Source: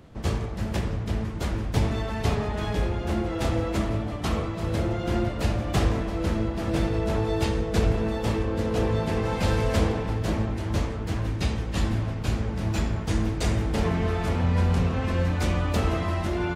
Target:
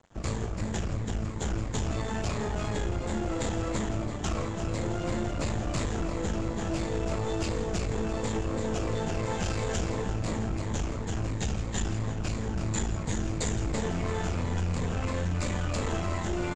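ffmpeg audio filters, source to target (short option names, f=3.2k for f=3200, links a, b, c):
-filter_complex "[0:a]afftfilt=real='re*pow(10,7/40*sin(2*PI*(1*log(max(b,1)*sr/1024/100)/log(2)-(-2.9)*(pts-256)/sr)))':imag='im*pow(10,7/40*sin(2*PI*(1*log(max(b,1)*sr/1024/100)/log(2)-(-2.9)*(pts-256)/sr)))':win_size=1024:overlap=0.75,highshelf=f=5k:g=-11.5,acrossover=split=2100[a][b];[a]alimiter=limit=-19dB:level=0:latency=1:release=62[c];[c][b]amix=inputs=2:normalize=0,aeval=exprs='(tanh(20*val(0)+0.5)-tanh(0.5))/20':c=same,aeval=exprs='sgn(val(0))*max(abs(val(0))-0.00335,0)':c=same,lowpass=f=7.2k:t=q:w=7.6,asplit=7[d][e][f][g][h][i][j];[e]adelay=165,afreqshift=-72,volume=-16dB[k];[f]adelay=330,afreqshift=-144,volume=-20.3dB[l];[g]adelay=495,afreqshift=-216,volume=-24.6dB[m];[h]adelay=660,afreqshift=-288,volume=-28.9dB[n];[i]adelay=825,afreqshift=-360,volume=-33.2dB[o];[j]adelay=990,afreqshift=-432,volume=-37.5dB[p];[d][k][l][m][n][o][p]amix=inputs=7:normalize=0,volume=1.5dB"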